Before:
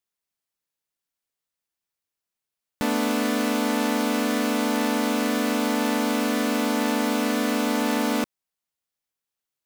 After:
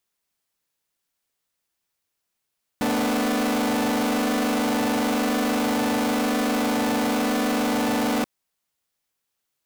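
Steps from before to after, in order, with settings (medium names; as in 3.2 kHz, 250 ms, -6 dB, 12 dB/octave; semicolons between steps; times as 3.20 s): saturation -28 dBFS, distortion -9 dB; trim +7.5 dB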